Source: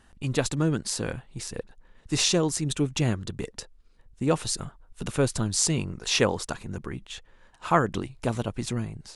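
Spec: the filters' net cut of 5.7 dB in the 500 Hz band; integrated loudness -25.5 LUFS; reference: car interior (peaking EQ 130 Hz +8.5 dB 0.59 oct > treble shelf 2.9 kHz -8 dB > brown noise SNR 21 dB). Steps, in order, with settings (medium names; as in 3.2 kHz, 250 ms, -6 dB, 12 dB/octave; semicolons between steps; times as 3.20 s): peaking EQ 130 Hz +8.5 dB 0.59 oct; peaking EQ 500 Hz -7 dB; treble shelf 2.9 kHz -8 dB; brown noise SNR 21 dB; trim +1.5 dB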